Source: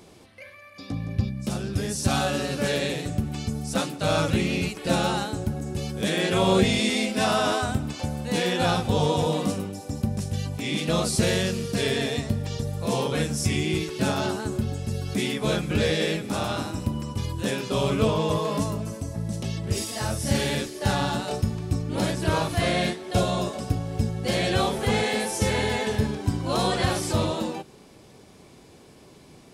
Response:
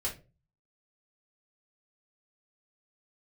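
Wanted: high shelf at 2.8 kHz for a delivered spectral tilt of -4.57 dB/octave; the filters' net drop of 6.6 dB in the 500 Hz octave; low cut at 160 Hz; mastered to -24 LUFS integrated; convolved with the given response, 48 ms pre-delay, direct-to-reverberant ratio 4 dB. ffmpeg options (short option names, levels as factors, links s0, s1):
-filter_complex "[0:a]highpass=160,equalizer=f=500:t=o:g=-8,highshelf=f=2800:g=-7.5,asplit=2[s0][s1];[1:a]atrim=start_sample=2205,adelay=48[s2];[s1][s2]afir=irnorm=-1:irlink=0,volume=0.447[s3];[s0][s3]amix=inputs=2:normalize=0,volume=1.68"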